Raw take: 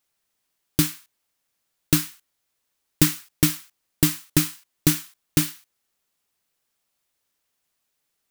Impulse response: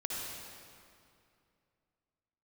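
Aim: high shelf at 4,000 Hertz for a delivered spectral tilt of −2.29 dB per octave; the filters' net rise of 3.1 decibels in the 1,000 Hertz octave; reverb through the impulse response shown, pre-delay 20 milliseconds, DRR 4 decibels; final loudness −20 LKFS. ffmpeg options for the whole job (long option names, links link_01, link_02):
-filter_complex "[0:a]equalizer=frequency=1000:width_type=o:gain=3.5,highshelf=frequency=4000:gain=6.5,asplit=2[link_01][link_02];[1:a]atrim=start_sample=2205,adelay=20[link_03];[link_02][link_03]afir=irnorm=-1:irlink=0,volume=-7dB[link_04];[link_01][link_04]amix=inputs=2:normalize=0,volume=-1.5dB"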